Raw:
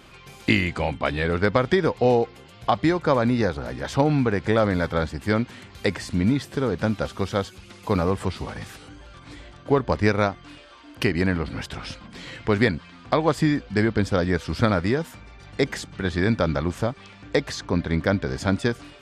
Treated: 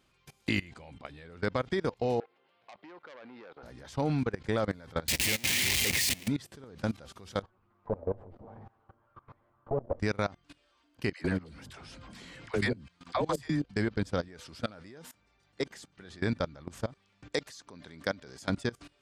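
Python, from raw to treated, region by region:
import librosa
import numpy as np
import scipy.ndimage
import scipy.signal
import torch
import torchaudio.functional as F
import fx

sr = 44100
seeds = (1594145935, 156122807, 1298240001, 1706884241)

y = fx.chain(x, sr, fx.highpass(hz=460.0, slope=12),
    fx.air_absorb(metres=370.0),
    fx.transformer_sat(knee_hz=2300.0), at=(2.2, 3.63))
y = fx.chain(y, sr, fx.clip_1bit(),
    fx.highpass(hz=44.0, slope=12),
    fx.high_shelf_res(hz=1700.0, db=7.5, q=3.0), at=(5.08, 6.28))
y = fx.chain(y, sr, fx.lower_of_two(delay_ms=8.8),
    fx.envelope_lowpass(base_hz=610.0, top_hz=1300.0, q=2.8, full_db=-27.5, direction='down'), at=(7.42, 10.0))
y = fx.chain(y, sr, fx.high_shelf(hz=8900.0, db=9.0),
    fx.dispersion(late='lows', ms=88.0, hz=530.0),
    fx.band_squash(depth_pct=40), at=(11.13, 13.64))
y = fx.chain(y, sr, fx.low_shelf(hz=130.0, db=-10.5),
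    fx.transformer_sat(knee_hz=560.0), at=(14.28, 16.21))
y = fx.chain(y, sr, fx.highpass(hz=220.0, slope=6),
    fx.high_shelf(hz=4800.0, db=10.0), at=(17.32, 18.5))
y = fx.bass_treble(y, sr, bass_db=1, treble_db=5)
y = fx.level_steps(y, sr, step_db=21)
y = y * librosa.db_to_amplitude(-7.0)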